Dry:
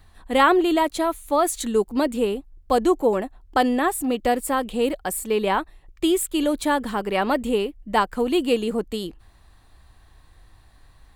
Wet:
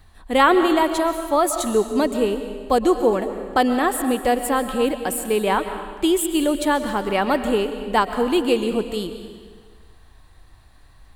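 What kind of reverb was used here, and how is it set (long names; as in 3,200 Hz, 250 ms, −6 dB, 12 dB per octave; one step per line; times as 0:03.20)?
comb and all-pass reverb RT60 1.6 s, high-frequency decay 0.95×, pre-delay 90 ms, DRR 8.5 dB
level +1.5 dB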